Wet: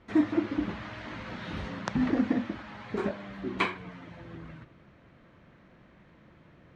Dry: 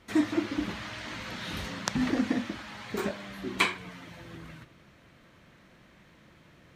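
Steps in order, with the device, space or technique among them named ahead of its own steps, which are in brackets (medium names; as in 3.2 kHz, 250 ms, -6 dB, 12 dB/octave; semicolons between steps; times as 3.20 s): through cloth (low-pass 6.9 kHz 12 dB/octave; treble shelf 3 kHz -15.5 dB); trim +1.5 dB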